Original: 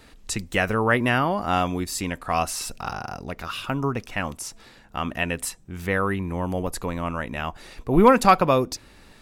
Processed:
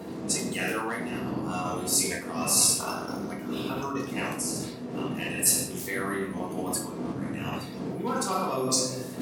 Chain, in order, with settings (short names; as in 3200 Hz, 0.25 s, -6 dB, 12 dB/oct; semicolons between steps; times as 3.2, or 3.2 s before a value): bin magnitudes rounded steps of 30 dB; wind noise 270 Hz -22 dBFS; in parallel at -10 dB: hard clip -16 dBFS, distortion -7 dB; on the sum: shoebox room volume 230 m³, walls mixed, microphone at 1.7 m; dynamic EQ 190 Hz, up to +4 dB, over -17 dBFS, Q 0.86; reverse; compressor 10:1, threshold -22 dBFS, peak gain reduction 25 dB; reverse; HPF 98 Hz 24 dB/oct; tone controls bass -8 dB, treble +14 dB; gain -2 dB